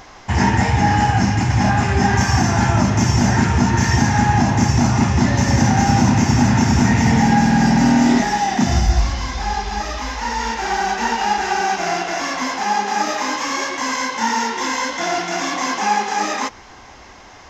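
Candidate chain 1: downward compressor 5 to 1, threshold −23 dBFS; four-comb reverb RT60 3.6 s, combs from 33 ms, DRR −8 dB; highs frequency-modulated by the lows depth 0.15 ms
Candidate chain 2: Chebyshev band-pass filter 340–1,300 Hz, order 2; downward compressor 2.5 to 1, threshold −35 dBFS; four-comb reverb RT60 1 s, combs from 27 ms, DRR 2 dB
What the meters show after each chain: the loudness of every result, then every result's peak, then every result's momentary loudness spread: −17.5, −31.0 LKFS; −4.5, −17.0 dBFS; 3, 4 LU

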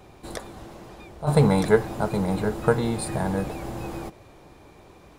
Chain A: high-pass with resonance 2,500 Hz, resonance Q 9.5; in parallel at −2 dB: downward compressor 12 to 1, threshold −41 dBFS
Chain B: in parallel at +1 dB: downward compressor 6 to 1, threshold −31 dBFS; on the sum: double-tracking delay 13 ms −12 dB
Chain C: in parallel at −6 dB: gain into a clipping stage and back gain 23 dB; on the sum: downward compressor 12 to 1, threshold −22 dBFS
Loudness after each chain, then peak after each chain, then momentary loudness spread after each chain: −30.0, −22.5, −28.5 LKFS; −12.5, −2.0, −12.0 dBFS; 14, 18, 20 LU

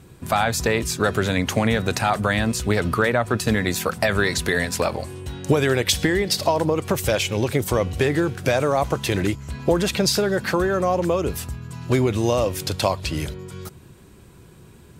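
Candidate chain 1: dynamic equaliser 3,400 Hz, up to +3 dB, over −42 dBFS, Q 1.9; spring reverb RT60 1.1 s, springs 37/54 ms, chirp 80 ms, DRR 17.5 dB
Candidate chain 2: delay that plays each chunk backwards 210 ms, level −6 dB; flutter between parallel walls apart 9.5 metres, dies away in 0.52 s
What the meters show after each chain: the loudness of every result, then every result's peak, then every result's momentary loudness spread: −21.5, −20.0 LKFS; −5.5, −4.5 dBFS; 7, 6 LU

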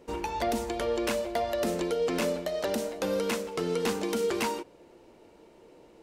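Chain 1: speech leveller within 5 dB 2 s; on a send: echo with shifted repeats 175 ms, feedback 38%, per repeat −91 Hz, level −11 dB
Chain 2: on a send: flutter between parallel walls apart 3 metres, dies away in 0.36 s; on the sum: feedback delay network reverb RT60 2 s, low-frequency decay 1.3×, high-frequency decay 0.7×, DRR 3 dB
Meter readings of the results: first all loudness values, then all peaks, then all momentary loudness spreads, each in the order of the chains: −29.5, −25.5 LKFS; −16.5, −11.5 dBFS; 3, 7 LU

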